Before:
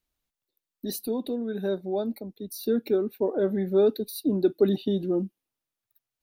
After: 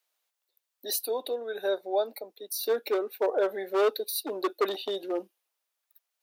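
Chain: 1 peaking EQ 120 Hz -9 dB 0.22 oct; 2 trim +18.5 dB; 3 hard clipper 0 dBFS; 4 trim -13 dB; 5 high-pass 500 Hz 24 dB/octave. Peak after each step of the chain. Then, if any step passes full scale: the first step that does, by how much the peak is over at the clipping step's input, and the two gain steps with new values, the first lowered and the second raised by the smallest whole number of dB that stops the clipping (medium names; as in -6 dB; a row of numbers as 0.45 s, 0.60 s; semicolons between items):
-10.5 dBFS, +8.0 dBFS, 0.0 dBFS, -13.0 dBFS, -14.0 dBFS; step 2, 8.0 dB; step 2 +10.5 dB, step 4 -5 dB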